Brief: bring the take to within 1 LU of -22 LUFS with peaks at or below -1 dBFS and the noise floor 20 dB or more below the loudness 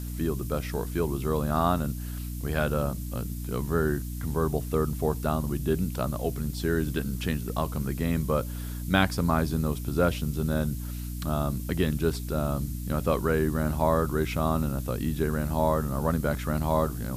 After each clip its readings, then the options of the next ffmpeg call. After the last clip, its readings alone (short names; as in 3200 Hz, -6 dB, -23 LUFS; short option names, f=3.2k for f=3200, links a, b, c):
hum 60 Hz; harmonics up to 300 Hz; hum level -32 dBFS; noise floor -35 dBFS; noise floor target -49 dBFS; loudness -28.5 LUFS; peak -6.5 dBFS; loudness target -22.0 LUFS
-> -af "bandreject=f=60:t=h:w=4,bandreject=f=120:t=h:w=4,bandreject=f=180:t=h:w=4,bandreject=f=240:t=h:w=4,bandreject=f=300:t=h:w=4"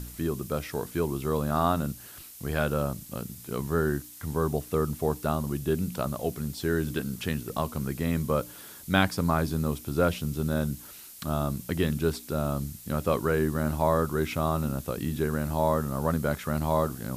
hum none; noise floor -46 dBFS; noise floor target -49 dBFS
-> -af "afftdn=nr=6:nf=-46"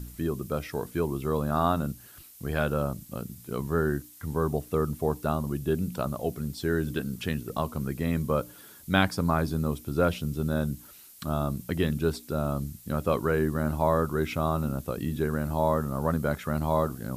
noise floor -50 dBFS; loudness -29.0 LUFS; peak -6.5 dBFS; loudness target -22.0 LUFS
-> -af "volume=7dB,alimiter=limit=-1dB:level=0:latency=1"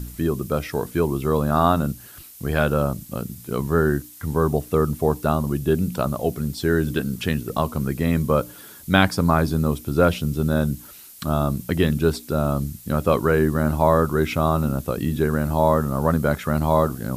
loudness -22.0 LUFS; peak -1.0 dBFS; noise floor -43 dBFS